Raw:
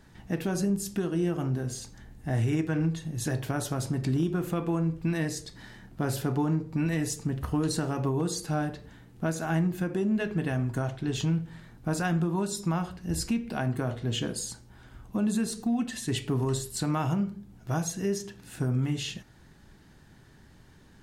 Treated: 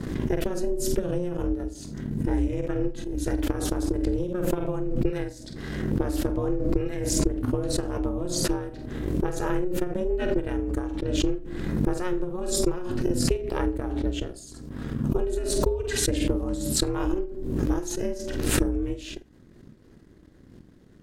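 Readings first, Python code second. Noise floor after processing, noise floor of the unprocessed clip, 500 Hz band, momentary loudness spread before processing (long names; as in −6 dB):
−52 dBFS, −55 dBFS, +6.0 dB, 8 LU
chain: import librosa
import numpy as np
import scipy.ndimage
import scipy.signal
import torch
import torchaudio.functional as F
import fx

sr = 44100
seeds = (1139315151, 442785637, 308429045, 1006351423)

y = fx.low_shelf(x, sr, hz=280.0, db=10.0)
y = fx.transient(y, sr, attack_db=9, sustain_db=-6)
y = y * np.sin(2.0 * np.pi * 180.0 * np.arange(len(y)) / sr)
y = fx.doubler(y, sr, ms=48.0, db=-11.5)
y = fx.pre_swell(y, sr, db_per_s=35.0)
y = F.gain(torch.from_numpy(y), -6.0).numpy()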